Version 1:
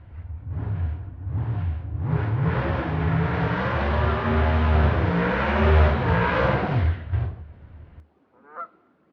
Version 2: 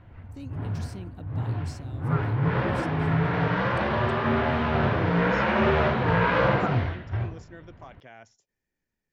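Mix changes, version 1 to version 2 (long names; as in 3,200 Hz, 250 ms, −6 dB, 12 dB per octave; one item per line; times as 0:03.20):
speech: unmuted
second sound: entry −1.95 s
master: add parametric band 76 Hz −14.5 dB 0.39 octaves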